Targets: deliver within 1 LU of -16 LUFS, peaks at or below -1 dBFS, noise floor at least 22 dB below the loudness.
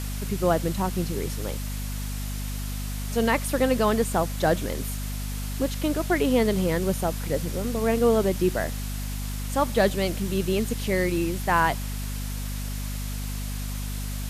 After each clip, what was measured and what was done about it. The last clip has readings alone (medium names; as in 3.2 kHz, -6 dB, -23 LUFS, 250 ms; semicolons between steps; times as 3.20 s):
hum 50 Hz; highest harmonic 250 Hz; hum level -28 dBFS; noise floor -31 dBFS; noise floor target -49 dBFS; loudness -26.5 LUFS; peak level -7.5 dBFS; loudness target -16.0 LUFS
-> hum notches 50/100/150/200/250 Hz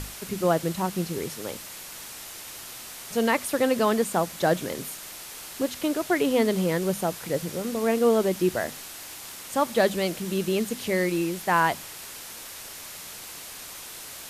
hum not found; noise floor -41 dBFS; noise floor target -48 dBFS
-> noise print and reduce 7 dB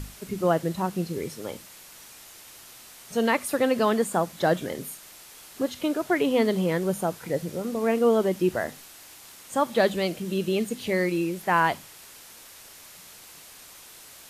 noise floor -48 dBFS; loudness -26.0 LUFS; peak level -9.0 dBFS; loudness target -16.0 LUFS
-> trim +10 dB; peak limiter -1 dBFS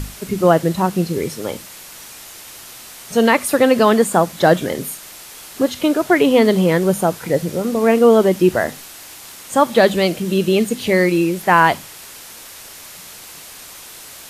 loudness -16.0 LUFS; peak level -1.0 dBFS; noise floor -38 dBFS